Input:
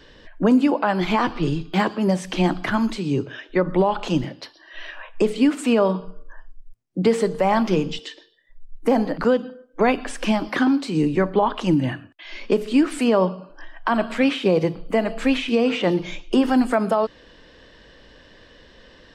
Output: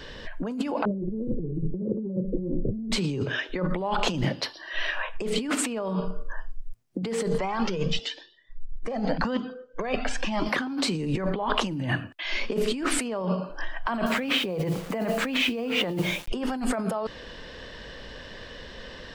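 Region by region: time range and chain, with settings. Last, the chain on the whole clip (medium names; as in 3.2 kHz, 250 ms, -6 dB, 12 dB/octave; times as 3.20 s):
0.85–2.92 s: steep low-pass 540 Hz 96 dB/octave + bass shelf 210 Hz +3.5 dB + doubling 41 ms -5 dB
7.38–10.46 s: low-pass 6.9 kHz 24 dB/octave + Shepard-style flanger rising 1 Hz
14.06–16.28 s: high-pass 58 Hz + treble shelf 4.5 kHz -7.5 dB + word length cut 8-bit, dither none
whole clip: peaking EQ 310 Hz -6 dB 0.35 oct; peak limiter -16 dBFS; compressor with a negative ratio -30 dBFS, ratio -1; trim +3 dB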